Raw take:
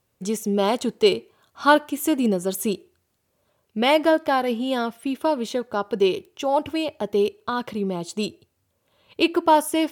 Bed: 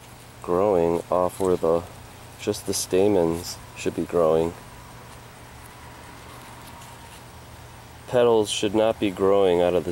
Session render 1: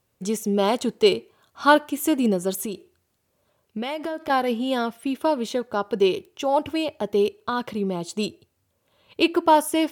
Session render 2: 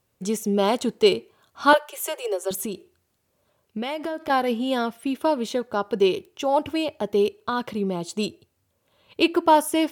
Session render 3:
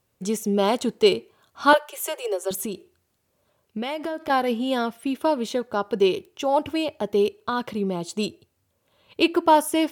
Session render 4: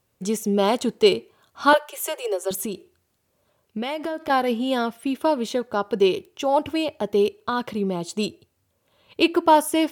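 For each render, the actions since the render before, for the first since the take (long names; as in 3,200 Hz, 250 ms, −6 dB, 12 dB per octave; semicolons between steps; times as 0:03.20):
0:02.53–0:04.30: downward compressor 10 to 1, threshold −25 dBFS
0:01.73–0:02.51: Butterworth high-pass 380 Hz 96 dB per octave
no processing that can be heard
level +1 dB; brickwall limiter −3 dBFS, peak gain reduction 2 dB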